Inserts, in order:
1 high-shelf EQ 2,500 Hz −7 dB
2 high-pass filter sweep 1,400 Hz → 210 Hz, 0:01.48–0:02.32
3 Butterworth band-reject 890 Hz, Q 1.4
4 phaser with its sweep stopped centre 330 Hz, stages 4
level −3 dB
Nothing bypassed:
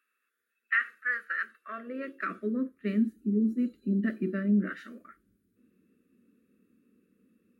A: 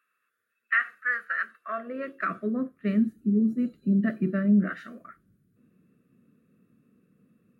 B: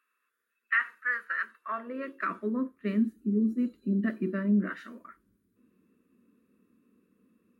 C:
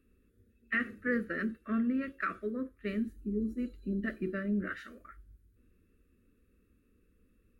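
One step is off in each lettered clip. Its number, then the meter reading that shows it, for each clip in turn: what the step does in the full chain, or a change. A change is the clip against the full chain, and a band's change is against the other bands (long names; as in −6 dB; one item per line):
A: 4, 1 kHz band +2.5 dB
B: 3, 1 kHz band +3.5 dB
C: 2, 500 Hz band +4.0 dB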